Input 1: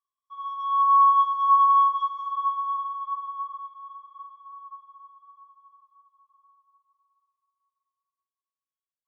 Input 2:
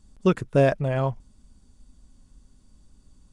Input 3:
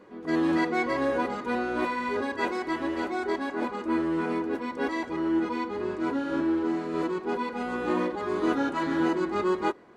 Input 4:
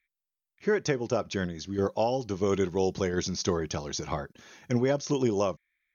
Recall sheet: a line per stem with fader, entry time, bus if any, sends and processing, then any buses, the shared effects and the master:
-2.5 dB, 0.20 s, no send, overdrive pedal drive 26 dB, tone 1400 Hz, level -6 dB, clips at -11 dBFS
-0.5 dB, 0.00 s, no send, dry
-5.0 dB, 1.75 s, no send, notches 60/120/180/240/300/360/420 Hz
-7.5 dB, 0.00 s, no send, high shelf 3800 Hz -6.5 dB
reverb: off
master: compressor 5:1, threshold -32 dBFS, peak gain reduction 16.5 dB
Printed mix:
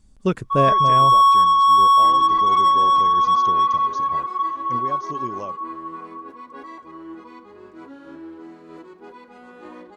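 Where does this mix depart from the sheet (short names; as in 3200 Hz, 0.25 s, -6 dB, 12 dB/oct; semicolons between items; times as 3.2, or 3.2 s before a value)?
stem 1 -2.5 dB -> +4.0 dB; stem 3 -5.0 dB -> -12.0 dB; master: missing compressor 5:1, threshold -32 dBFS, peak gain reduction 16.5 dB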